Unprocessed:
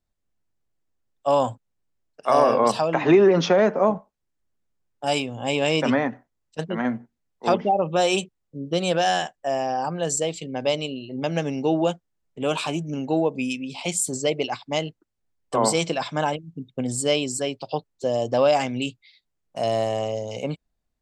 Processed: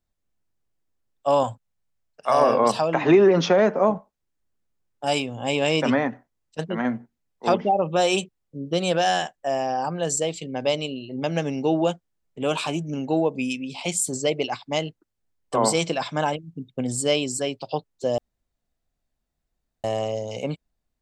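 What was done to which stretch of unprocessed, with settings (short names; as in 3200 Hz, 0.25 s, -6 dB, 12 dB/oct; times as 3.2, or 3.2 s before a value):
1.43–2.41 bell 330 Hz -9.5 dB
18.18–19.84 room tone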